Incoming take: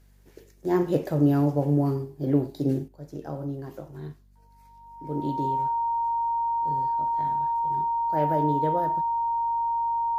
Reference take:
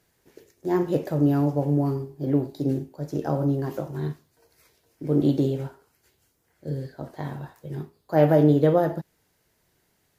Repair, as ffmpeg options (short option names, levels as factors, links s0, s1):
-af "bandreject=f=48.8:t=h:w=4,bandreject=f=97.6:t=h:w=4,bandreject=f=146.4:t=h:w=4,bandreject=f=195.2:t=h:w=4,bandreject=f=244:t=h:w=4,bandreject=f=930:w=30,asetnsamples=n=441:p=0,asendcmd='2.88 volume volume 9dB',volume=1"